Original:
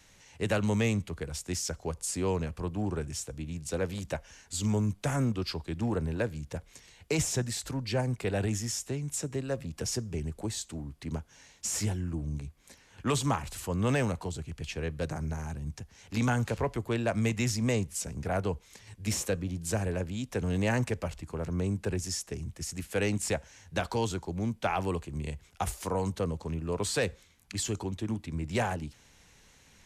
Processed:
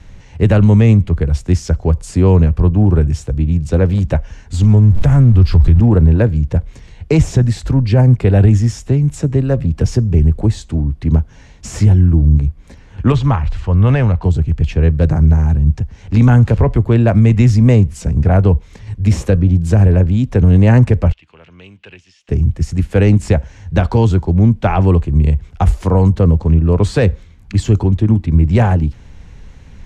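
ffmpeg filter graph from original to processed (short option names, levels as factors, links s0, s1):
-filter_complex "[0:a]asettb=1/sr,asplit=3[s0][s1][s2];[s0]atrim=end=4.544[s3];[s1]atrim=start=4.54:end=5.8,asetpts=PTS-STARTPTS,afade=t=in:d=0.004:c=qsin,afade=t=out:st=1.256:d=0.004:c=qsin,aeval=exprs='val(0)+0.5*0.01*sgn(val(0))':c=same,asubboost=boost=9:cutoff=150,acompressor=threshold=0.0282:ratio=2:attack=3.2:release=140:knee=1:detection=peak[s4];[s2]atrim=start=5.796[s5];[s3][s4]acrossfade=d=0.004:c1=hsin:c2=qsin[s6];[s6][s5]acrossfade=d=0.004:c1=qsin:c2=hsin,asettb=1/sr,asplit=3[s7][s8][s9];[s7]atrim=end=13.124[s10];[s8]atrim=start=13.12:end=14.24,asetpts=PTS-STARTPTS,afade=t=in:d=0.004:c=qsin,afade=t=out:st=1.116:d=0.004:c=qsin,lowpass=4200,equalizer=f=260:t=o:w=2.2:g=-8[s11];[s9]atrim=start=14.236[s12];[s10][s11]acrossfade=d=0.004:c1=hsin:c2=qsin[s13];[s13][s12]acrossfade=d=0.004:c1=qsin:c2=hsin,asettb=1/sr,asplit=3[s14][s15][s16];[s14]atrim=end=21.124[s17];[s15]atrim=start=21.12:end=22.29,asetpts=PTS-STARTPTS,afade=t=in:d=0.004:c=qsin,afade=t=out:st=1.166:d=0.004:c=qsin,aderivative,acompressor=threshold=0.00891:ratio=12:attack=3.2:release=140:knee=1:detection=peak,lowpass=f=2900:t=q:w=4[s18];[s16]atrim=start=22.286[s19];[s17][s18]acrossfade=d=0.004:c1=hsin:c2=qsin[s20];[s20][s19]acrossfade=d=0.004:c1=qsin:c2=hsin,aemphasis=mode=reproduction:type=riaa,alimiter=level_in=4.47:limit=0.891:release=50:level=0:latency=1,volume=0.891"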